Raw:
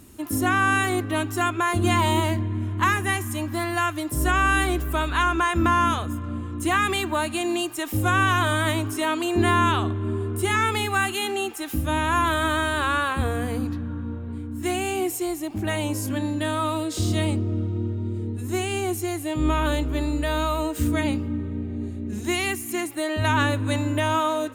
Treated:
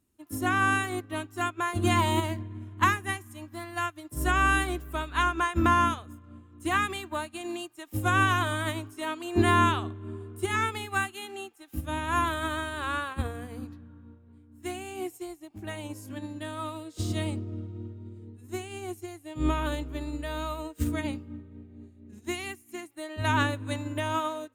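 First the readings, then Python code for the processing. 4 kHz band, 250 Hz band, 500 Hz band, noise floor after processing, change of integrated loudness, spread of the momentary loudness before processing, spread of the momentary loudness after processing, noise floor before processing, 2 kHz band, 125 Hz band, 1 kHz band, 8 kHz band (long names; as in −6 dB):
−7.0 dB, −7.5 dB, −7.5 dB, −56 dBFS, −5.5 dB, 8 LU, 17 LU, −33 dBFS, −5.0 dB, −7.0 dB, −4.5 dB, −8.5 dB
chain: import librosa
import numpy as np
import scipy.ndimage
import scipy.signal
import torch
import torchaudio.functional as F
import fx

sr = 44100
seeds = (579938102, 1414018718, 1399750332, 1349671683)

y = fx.upward_expand(x, sr, threshold_db=-35.0, expansion=2.5)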